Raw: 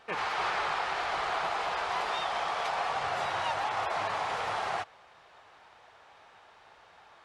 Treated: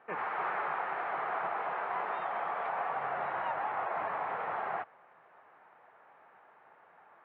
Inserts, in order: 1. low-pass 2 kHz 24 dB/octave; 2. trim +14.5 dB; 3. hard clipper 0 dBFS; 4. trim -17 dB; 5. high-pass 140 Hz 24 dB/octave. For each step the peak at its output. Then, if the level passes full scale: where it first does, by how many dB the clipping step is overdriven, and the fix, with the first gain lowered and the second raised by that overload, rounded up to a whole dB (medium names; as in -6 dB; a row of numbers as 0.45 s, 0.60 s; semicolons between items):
-19.5 dBFS, -5.0 dBFS, -5.0 dBFS, -22.0 dBFS, -21.5 dBFS; nothing clips